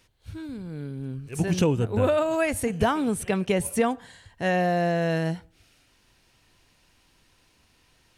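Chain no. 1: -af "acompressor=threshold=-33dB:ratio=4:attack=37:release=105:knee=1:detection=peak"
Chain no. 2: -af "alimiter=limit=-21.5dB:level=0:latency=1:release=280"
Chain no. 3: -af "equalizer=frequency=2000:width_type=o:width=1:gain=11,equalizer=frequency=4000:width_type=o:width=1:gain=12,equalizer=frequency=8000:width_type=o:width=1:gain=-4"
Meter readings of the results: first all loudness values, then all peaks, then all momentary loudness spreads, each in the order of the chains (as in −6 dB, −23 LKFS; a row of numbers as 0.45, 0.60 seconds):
−33.0, −33.0, −21.5 LKFS; −15.5, −21.5, −4.5 dBFS; 6, 7, 17 LU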